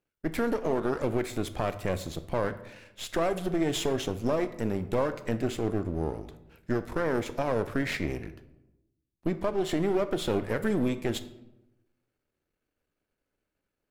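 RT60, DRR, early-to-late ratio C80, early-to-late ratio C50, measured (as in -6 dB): 0.95 s, 11.5 dB, 16.5 dB, 14.0 dB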